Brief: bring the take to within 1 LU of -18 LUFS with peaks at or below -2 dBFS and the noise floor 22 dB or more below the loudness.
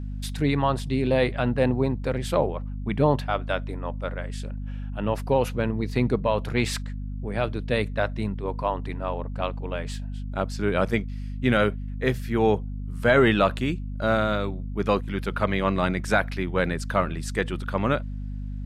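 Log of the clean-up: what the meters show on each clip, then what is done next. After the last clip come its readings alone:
hum 50 Hz; harmonics up to 250 Hz; hum level -29 dBFS; loudness -26.0 LUFS; peak -7.0 dBFS; loudness target -18.0 LUFS
-> de-hum 50 Hz, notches 5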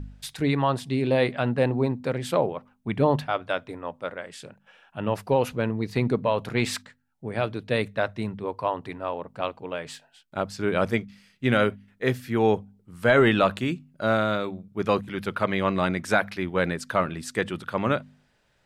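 hum none; loudness -26.0 LUFS; peak -7.5 dBFS; loudness target -18.0 LUFS
-> gain +8 dB; limiter -2 dBFS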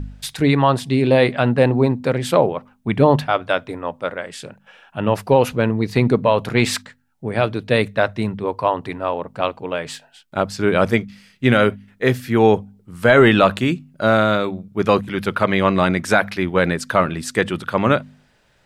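loudness -18.5 LUFS; peak -2.0 dBFS; noise floor -59 dBFS

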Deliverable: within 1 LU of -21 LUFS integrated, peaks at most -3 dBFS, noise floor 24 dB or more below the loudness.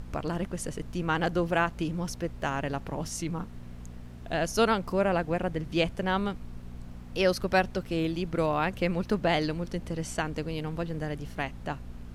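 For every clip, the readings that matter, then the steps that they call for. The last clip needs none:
hum 60 Hz; harmonics up to 240 Hz; hum level -43 dBFS; noise floor -44 dBFS; noise floor target -54 dBFS; loudness -30.0 LUFS; peak -9.5 dBFS; loudness target -21.0 LUFS
-> de-hum 60 Hz, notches 4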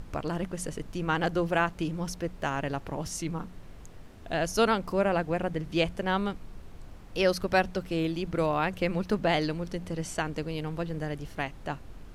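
hum none; noise floor -47 dBFS; noise floor target -54 dBFS
-> noise print and reduce 7 dB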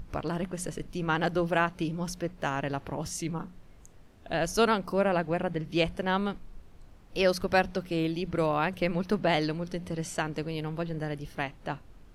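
noise floor -53 dBFS; noise floor target -54 dBFS
-> noise print and reduce 6 dB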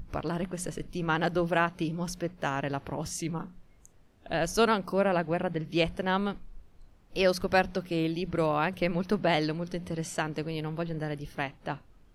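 noise floor -58 dBFS; loudness -30.0 LUFS; peak -10.0 dBFS; loudness target -21.0 LUFS
-> gain +9 dB; limiter -3 dBFS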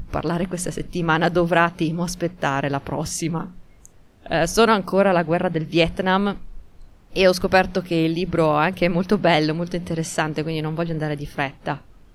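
loudness -21.0 LUFS; peak -3.0 dBFS; noise floor -49 dBFS

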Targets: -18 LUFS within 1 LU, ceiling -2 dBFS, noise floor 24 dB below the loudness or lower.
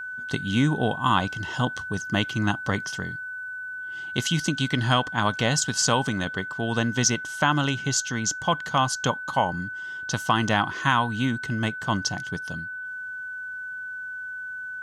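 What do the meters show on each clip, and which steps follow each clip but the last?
steady tone 1500 Hz; tone level -32 dBFS; loudness -26.0 LUFS; peak -6.5 dBFS; loudness target -18.0 LUFS
-> notch 1500 Hz, Q 30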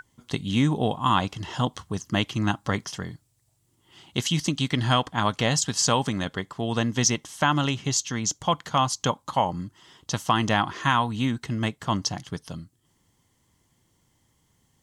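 steady tone none; loudness -25.5 LUFS; peak -7.5 dBFS; loudness target -18.0 LUFS
-> gain +7.5 dB; limiter -2 dBFS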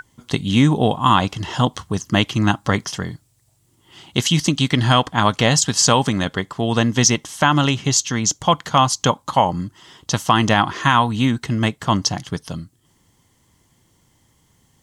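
loudness -18.5 LUFS; peak -2.0 dBFS; noise floor -61 dBFS

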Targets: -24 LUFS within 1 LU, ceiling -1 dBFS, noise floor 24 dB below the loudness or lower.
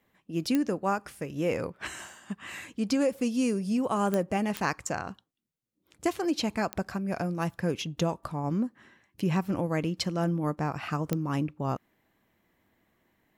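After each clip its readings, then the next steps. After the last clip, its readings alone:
clicks 5; loudness -30.5 LUFS; peak -10.5 dBFS; loudness target -24.0 LUFS
-> de-click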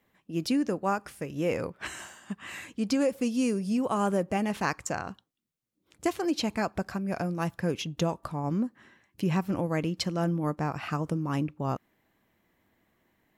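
clicks 0; loudness -30.5 LUFS; peak -13.0 dBFS; loudness target -24.0 LUFS
-> gain +6.5 dB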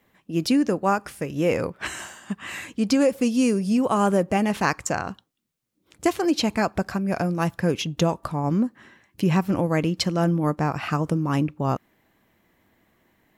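loudness -24.0 LUFS; peak -6.5 dBFS; noise floor -70 dBFS

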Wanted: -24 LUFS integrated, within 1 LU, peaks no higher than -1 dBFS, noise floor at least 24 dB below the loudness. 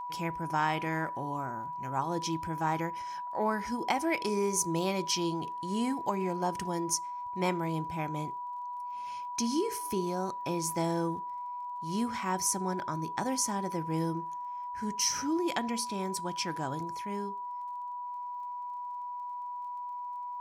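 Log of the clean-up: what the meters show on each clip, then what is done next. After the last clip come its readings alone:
ticks 20/s; steady tone 980 Hz; tone level -36 dBFS; loudness -33.0 LUFS; peak -15.0 dBFS; loudness target -24.0 LUFS
-> de-click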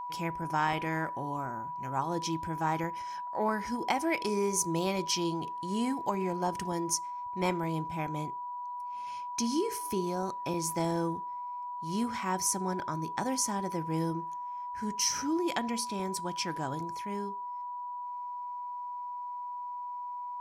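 ticks 0.15/s; steady tone 980 Hz; tone level -36 dBFS
-> notch 980 Hz, Q 30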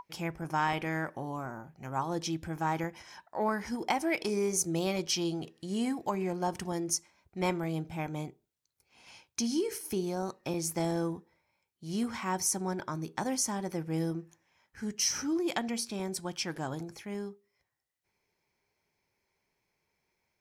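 steady tone none; loudness -33.5 LUFS; peak -16.5 dBFS; loudness target -24.0 LUFS
-> gain +9.5 dB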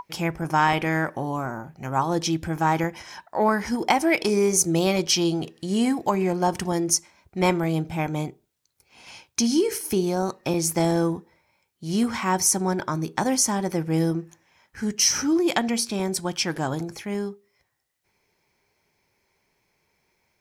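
loudness -24.0 LUFS; peak -7.0 dBFS; noise floor -72 dBFS

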